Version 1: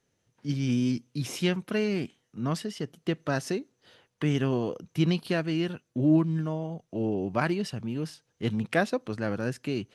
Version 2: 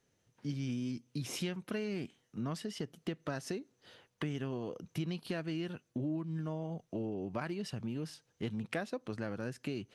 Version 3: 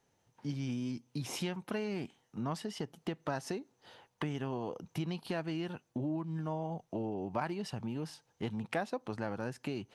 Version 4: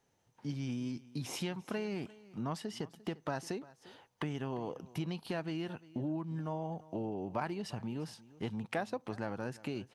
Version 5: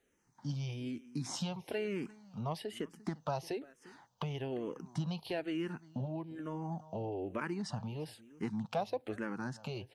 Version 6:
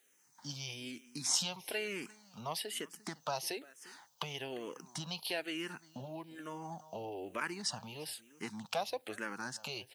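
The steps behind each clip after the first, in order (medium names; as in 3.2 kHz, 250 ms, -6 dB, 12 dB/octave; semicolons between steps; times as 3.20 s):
compression 5:1, threshold -34 dBFS, peak gain reduction 15 dB; trim -1 dB
peaking EQ 860 Hz +10.5 dB 0.61 oct
delay 349 ms -20 dB; trim -1 dB
barber-pole phaser -1.1 Hz; trim +3 dB
tilt EQ +4 dB/octave; trim +1 dB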